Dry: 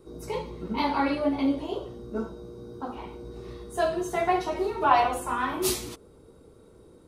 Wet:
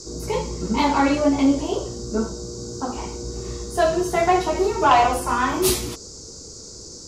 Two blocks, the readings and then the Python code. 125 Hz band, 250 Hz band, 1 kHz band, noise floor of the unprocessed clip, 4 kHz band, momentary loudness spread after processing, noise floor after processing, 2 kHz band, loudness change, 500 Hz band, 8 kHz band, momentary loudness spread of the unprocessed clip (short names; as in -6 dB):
+10.0 dB, +7.5 dB, +6.0 dB, -54 dBFS, +8.0 dB, 18 LU, -40 dBFS, +6.0 dB, +6.5 dB, +7.0 dB, +9.5 dB, 19 LU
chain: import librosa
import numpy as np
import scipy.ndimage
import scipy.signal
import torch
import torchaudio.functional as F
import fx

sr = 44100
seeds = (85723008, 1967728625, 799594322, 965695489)

y = fx.low_shelf(x, sr, hz=150.0, db=5.5)
y = fx.fold_sine(y, sr, drive_db=5, ceiling_db=-6.5)
y = fx.dmg_noise_band(y, sr, seeds[0], low_hz=4500.0, high_hz=7500.0, level_db=-39.0)
y = F.gain(torch.from_numpy(y), -2.0).numpy()